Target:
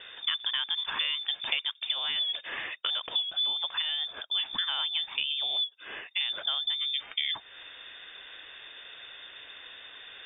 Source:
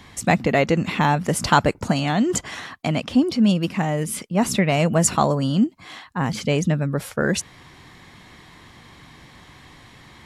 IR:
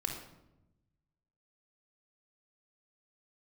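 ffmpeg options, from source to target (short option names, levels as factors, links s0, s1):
-filter_complex "[0:a]acompressor=threshold=0.0398:ratio=6,asettb=1/sr,asplit=3[s0][s1][s2];[s0]atrim=end=3.624[s3];[s1]atrim=start=3.62:end=5.62,asetpts=PTS-STARTPTS,afade=t=in:d=0.004:c=qsin,afade=t=out:st=1.996:d=0.004:c=qsin,aemphasis=mode=production:type=50fm[s4];[s2]atrim=start=5.616[s5];[s3][s4]acrossfade=d=0.004:c1=hsin:c2=qsin[s6];[s6][s5]acrossfade=d=0.004:c1=qsin:c2=hsin,lowpass=f=3100:t=q:w=0.5098,lowpass=f=3100:t=q:w=0.6013,lowpass=f=3100:t=q:w=0.9,lowpass=f=3100:t=q:w=2.563,afreqshift=-3700"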